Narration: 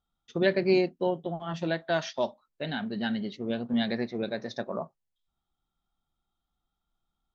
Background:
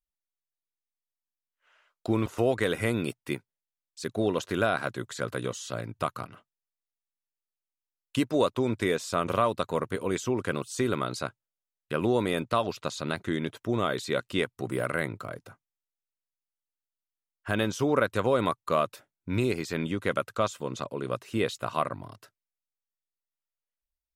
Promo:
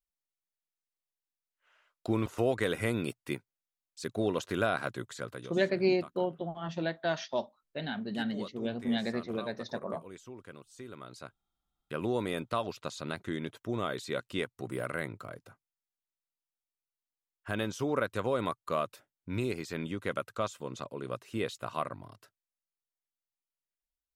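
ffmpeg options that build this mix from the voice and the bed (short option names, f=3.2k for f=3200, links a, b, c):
-filter_complex "[0:a]adelay=5150,volume=-3.5dB[a];[1:a]volume=9.5dB,afade=t=out:st=4.96:d=0.63:silence=0.16788,afade=t=in:st=10.91:d=1.24:silence=0.223872[b];[a][b]amix=inputs=2:normalize=0"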